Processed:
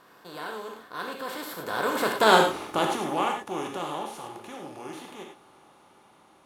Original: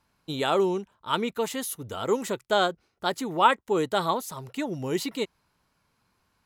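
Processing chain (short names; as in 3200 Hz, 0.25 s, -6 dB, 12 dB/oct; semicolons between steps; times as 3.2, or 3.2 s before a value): per-bin compression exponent 0.4; Doppler pass-by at 2.38, 42 m/s, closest 9 m; non-linear reverb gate 0.13 s flat, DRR 1 dB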